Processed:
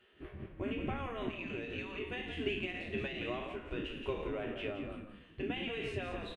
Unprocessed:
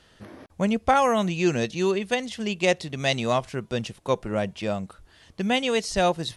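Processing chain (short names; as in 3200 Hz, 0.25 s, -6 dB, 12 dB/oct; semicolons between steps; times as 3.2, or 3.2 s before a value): spectral trails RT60 0.54 s; limiter -14.5 dBFS, peak gain reduction 8 dB; resonant high shelf 3800 Hz -12 dB, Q 3; notch 890 Hz, Q 12; compressor, threshold -25 dBFS, peak gain reduction 7.5 dB; EQ curve 190 Hz 0 dB, 270 Hz +9 dB, 480 Hz -23 dB; spectral gate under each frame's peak -15 dB weak; notch comb 170 Hz; on a send: frequency-shifting echo 0.172 s, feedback 33%, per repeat -42 Hz, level -7 dB; on the sum: noise-modulated level, depth 55%; gain +14 dB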